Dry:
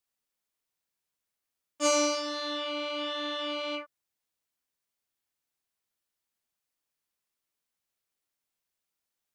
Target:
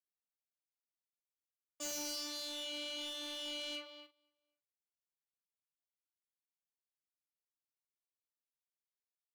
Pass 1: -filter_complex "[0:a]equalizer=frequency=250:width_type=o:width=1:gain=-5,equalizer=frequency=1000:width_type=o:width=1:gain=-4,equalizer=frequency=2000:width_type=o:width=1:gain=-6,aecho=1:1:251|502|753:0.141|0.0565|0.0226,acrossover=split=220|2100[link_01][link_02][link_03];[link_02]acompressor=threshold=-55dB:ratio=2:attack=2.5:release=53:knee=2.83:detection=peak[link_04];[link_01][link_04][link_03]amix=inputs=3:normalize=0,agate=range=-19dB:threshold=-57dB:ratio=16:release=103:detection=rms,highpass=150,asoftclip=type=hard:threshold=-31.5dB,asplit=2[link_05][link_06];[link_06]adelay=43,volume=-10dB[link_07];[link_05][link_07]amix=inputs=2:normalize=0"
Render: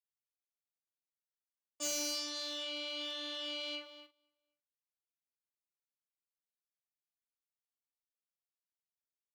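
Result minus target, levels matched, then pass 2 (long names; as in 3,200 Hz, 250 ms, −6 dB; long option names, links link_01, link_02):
hard clipping: distortion −5 dB
-filter_complex "[0:a]equalizer=frequency=250:width_type=o:width=1:gain=-5,equalizer=frequency=1000:width_type=o:width=1:gain=-4,equalizer=frequency=2000:width_type=o:width=1:gain=-6,aecho=1:1:251|502|753:0.141|0.0565|0.0226,acrossover=split=220|2100[link_01][link_02][link_03];[link_02]acompressor=threshold=-55dB:ratio=2:attack=2.5:release=53:knee=2.83:detection=peak[link_04];[link_01][link_04][link_03]amix=inputs=3:normalize=0,agate=range=-19dB:threshold=-57dB:ratio=16:release=103:detection=rms,highpass=150,asoftclip=type=hard:threshold=-38.5dB,asplit=2[link_05][link_06];[link_06]adelay=43,volume=-10dB[link_07];[link_05][link_07]amix=inputs=2:normalize=0"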